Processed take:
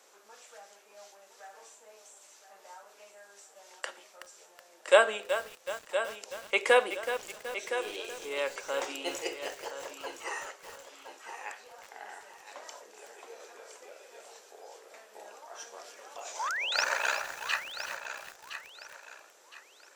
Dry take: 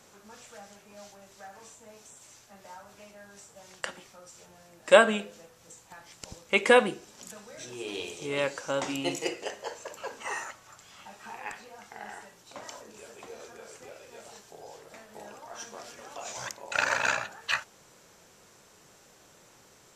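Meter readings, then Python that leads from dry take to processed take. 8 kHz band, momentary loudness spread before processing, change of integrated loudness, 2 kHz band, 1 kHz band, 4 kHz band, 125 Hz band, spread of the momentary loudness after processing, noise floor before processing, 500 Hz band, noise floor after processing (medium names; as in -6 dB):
-1.5 dB, 26 LU, -3.5 dB, -2.0 dB, -2.0 dB, -0.5 dB, under -20 dB, 23 LU, -58 dBFS, -2.5 dB, -59 dBFS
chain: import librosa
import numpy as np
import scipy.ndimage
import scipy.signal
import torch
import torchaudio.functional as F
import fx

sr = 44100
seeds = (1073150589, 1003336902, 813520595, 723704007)

p1 = scipy.signal.sosfilt(scipy.signal.butter(4, 370.0, 'highpass', fs=sr, output='sos'), x)
p2 = fx.spec_paint(p1, sr, seeds[0], shape='rise', start_s=16.39, length_s=0.45, low_hz=820.0, high_hz=6200.0, level_db=-30.0)
p3 = p2 + fx.echo_feedback(p2, sr, ms=1015, feedback_pct=33, wet_db=-10.5, dry=0)
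p4 = fx.echo_crushed(p3, sr, ms=374, feedback_pct=55, bits=6, wet_db=-10)
y = p4 * 10.0 ** (-3.0 / 20.0)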